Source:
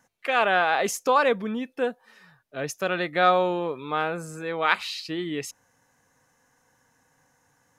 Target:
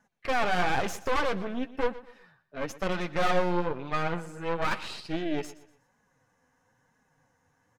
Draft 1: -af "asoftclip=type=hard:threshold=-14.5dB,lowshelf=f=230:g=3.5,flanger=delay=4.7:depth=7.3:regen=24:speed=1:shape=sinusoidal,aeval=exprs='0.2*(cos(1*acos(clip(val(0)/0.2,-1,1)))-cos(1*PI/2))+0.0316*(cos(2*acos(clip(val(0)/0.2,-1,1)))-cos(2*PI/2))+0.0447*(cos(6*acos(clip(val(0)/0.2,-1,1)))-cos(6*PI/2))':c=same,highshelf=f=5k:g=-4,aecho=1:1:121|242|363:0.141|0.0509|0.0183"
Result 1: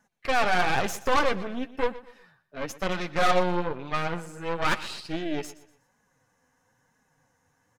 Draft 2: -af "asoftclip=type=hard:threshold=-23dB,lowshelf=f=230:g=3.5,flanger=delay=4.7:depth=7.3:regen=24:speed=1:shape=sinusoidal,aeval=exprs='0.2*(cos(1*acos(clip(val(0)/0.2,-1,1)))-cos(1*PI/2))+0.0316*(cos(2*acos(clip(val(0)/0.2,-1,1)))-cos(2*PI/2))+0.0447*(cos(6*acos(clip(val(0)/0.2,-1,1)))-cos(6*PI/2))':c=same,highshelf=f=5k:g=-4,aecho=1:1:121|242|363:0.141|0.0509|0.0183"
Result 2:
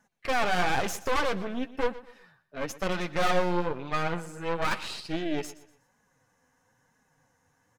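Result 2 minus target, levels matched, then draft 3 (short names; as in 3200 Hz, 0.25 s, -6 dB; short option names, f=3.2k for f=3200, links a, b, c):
8000 Hz band +4.0 dB
-af "asoftclip=type=hard:threshold=-23dB,lowshelf=f=230:g=3.5,flanger=delay=4.7:depth=7.3:regen=24:speed=1:shape=sinusoidal,aeval=exprs='0.2*(cos(1*acos(clip(val(0)/0.2,-1,1)))-cos(1*PI/2))+0.0316*(cos(2*acos(clip(val(0)/0.2,-1,1)))-cos(2*PI/2))+0.0447*(cos(6*acos(clip(val(0)/0.2,-1,1)))-cos(6*PI/2))':c=same,highshelf=f=5k:g=-10.5,aecho=1:1:121|242|363:0.141|0.0509|0.0183"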